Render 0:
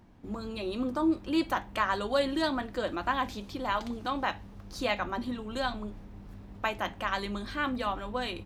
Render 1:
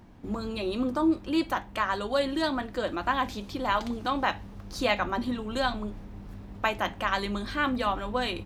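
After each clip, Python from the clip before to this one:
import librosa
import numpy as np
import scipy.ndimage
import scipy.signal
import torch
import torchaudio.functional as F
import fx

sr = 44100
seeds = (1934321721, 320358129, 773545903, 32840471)

y = fx.rider(x, sr, range_db=4, speed_s=2.0)
y = F.gain(torch.from_numpy(y), 2.5).numpy()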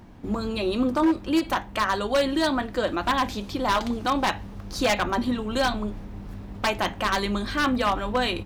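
y = 10.0 ** (-19.5 / 20.0) * (np.abs((x / 10.0 ** (-19.5 / 20.0) + 3.0) % 4.0 - 2.0) - 1.0)
y = fx.end_taper(y, sr, db_per_s=340.0)
y = F.gain(torch.from_numpy(y), 5.0).numpy()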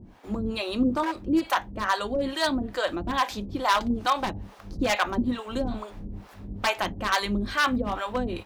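y = fx.harmonic_tremolo(x, sr, hz=2.3, depth_pct=100, crossover_hz=500.0)
y = F.gain(torch.from_numpy(y), 2.5).numpy()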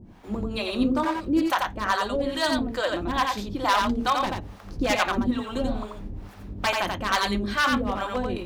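y = x + 10.0 ** (-3.5 / 20.0) * np.pad(x, (int(87 * sr / 1000.0), 0))[:len(x)]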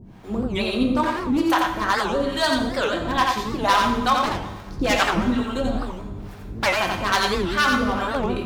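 y = fx.rev_fdn(x, sr, rt60_s=1.2, lf_ratio=1.0, hf_ratio=0.9, size_ms=44.0, drr_db=3.5)
y = fx.record_warp(y, sr, rpm=78.0, depth_cents=250.0)
y = F.gain(torch.from_numpy(y), 2.5).numpy()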